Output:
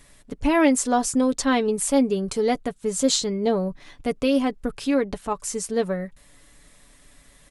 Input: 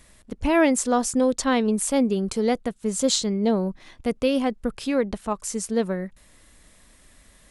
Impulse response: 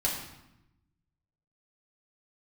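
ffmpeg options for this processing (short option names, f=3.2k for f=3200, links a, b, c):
-af "aecho=1:1:7:0.48"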